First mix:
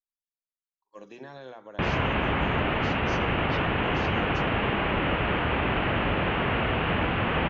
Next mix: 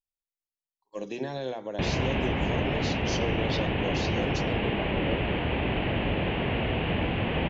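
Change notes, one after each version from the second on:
speech +11.5 dB; master: add peaking EQ 1.3 kHz -12.5 dB 0.88 oct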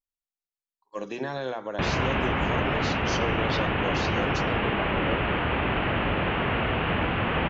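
master: add peaking EQ 1.3 kHz +12.5 dB 0.88 oct

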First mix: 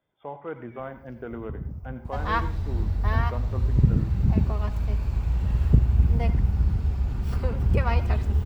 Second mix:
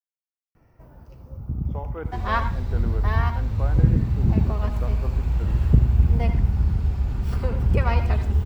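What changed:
speech: entry +1.50 s; first sound +7.5 dB; second sound: send +7.5 dB

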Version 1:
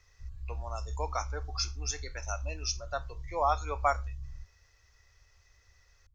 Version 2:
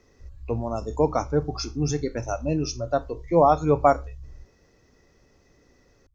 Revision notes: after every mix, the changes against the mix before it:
speech: remove high-pass 1.3 kHz 12 dB/octave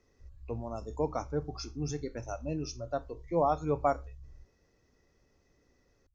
speech -10.0 dB; background -8.5 dB

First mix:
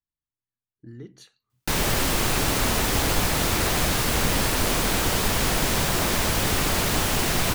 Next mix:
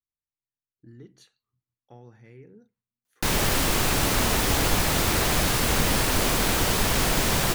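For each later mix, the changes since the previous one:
speech -6.0 dB; background: entry +1.55 s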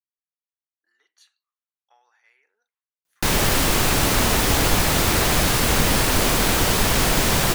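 speech: add high-pass 900 Hz 24 dB/octave; background +4.0 dB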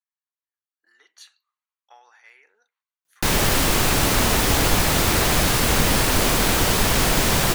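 speech +10.0 dB

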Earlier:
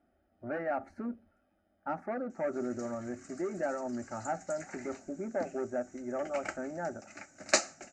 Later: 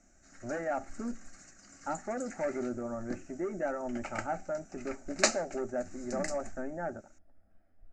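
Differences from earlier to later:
background: entry -2.30 s; master: remove high-pass 93 Hz 12 dB/octave

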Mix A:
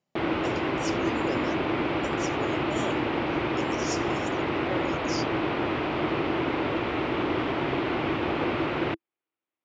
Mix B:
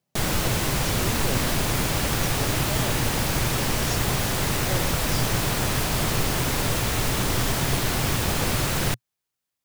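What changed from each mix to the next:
background: remove cabinet simulation 130–2700 Hz, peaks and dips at 190 Hz -8 dB, 330 Hz +10 dB, 1.7 kHz -5 dB; master: add peaking EQ 120 Hz +8 dB 0.65 oct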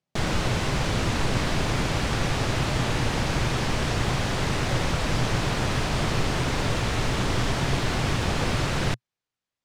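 speech -6.0 dB; master: add distance through air 87 m

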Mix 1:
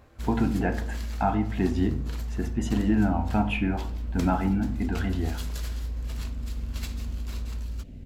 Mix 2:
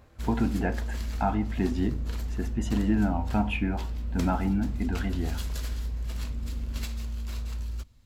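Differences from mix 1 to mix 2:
speech: send -9.0 dB; second sound: entry -1.65 s

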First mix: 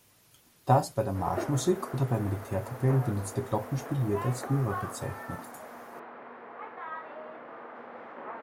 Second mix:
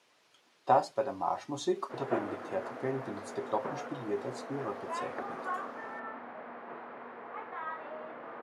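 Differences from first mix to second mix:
speech: add band-pass 390–4500 Hz; background: entry +0.75 s

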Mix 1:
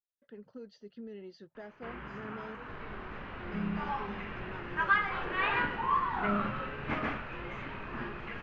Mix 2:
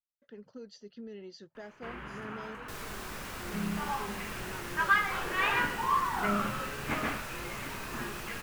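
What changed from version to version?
second sound: remove distance through air 390 m; master: remove distance through air 200 m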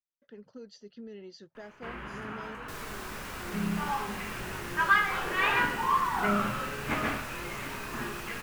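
first sound: send +9.5 dB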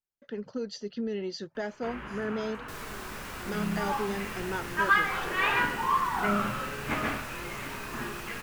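speech +12.0 dB

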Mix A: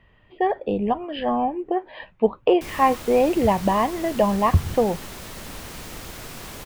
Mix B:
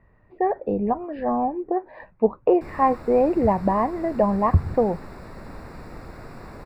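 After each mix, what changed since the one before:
master: add boxcar filter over 14 samples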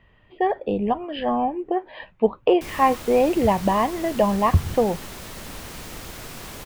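master: remove boxcar filter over 14 samples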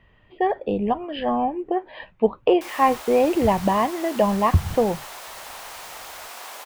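background: add resonant high-pass 770 Hz, resonance Q 1.8

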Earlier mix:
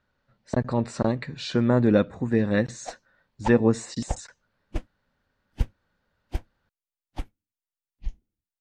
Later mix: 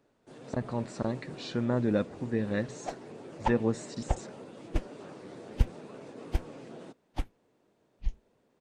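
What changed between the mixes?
speech -8.0 dB; first sound: unmuted

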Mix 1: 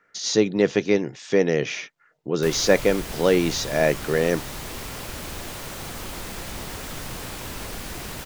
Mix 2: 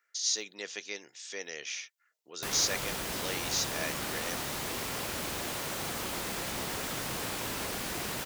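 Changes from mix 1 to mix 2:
speech: add differentiator; master: add high-pass 180 Hz 6 dB/octave

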